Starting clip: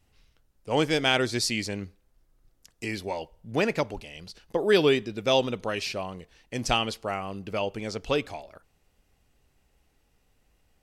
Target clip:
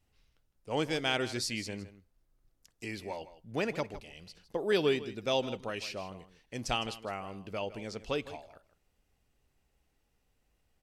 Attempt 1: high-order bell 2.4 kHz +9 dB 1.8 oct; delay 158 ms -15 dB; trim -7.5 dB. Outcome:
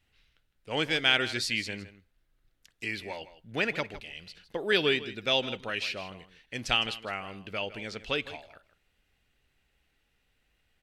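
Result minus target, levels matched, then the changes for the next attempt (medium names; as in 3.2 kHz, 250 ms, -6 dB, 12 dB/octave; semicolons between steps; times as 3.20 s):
2 kHz band +4.0 dB
remove: high-order bell 2.4 kHz +9 dB 1.8 oct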